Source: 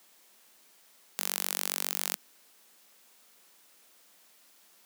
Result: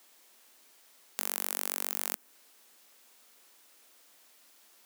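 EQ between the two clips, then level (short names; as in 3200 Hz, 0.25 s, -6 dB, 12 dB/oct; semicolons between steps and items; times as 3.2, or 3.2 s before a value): dynamic EQ 4100 Hz, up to -7 dB, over -51 dBFS, Q 0.75; brick-wall FIR high-pass 200 Hz; 0.0 dB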